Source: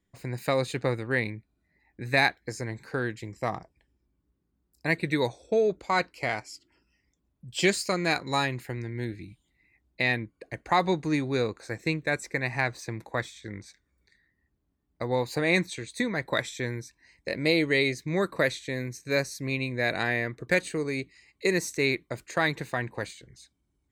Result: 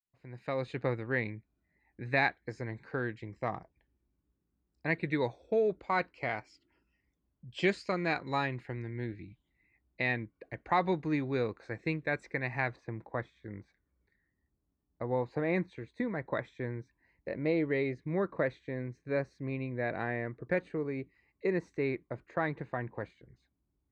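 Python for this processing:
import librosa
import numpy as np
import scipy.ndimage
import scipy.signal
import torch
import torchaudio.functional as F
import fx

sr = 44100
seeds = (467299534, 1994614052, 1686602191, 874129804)

y = fx.fade_in_head(x, sr, length_s=0.84)
y = fx.lowpass(y, sr, hz=fx.steps((0.0, 2700.0), (12.76, 1400.0)), slope=12)
y = F.gain(torch.from_numpy(y), -4.5).numpy()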